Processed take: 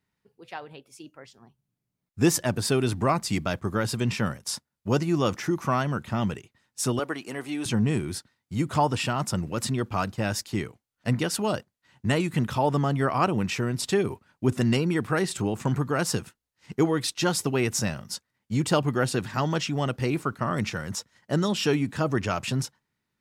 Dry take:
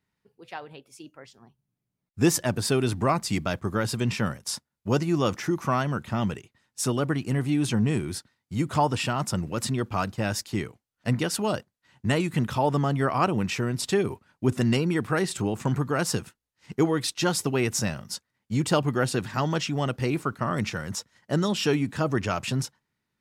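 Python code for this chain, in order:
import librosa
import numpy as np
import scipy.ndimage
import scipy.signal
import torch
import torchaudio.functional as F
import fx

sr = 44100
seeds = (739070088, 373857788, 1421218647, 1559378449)

y = fx.highpass(x, sr, hz=400.0, slope=12, at=(6.99, 7.66))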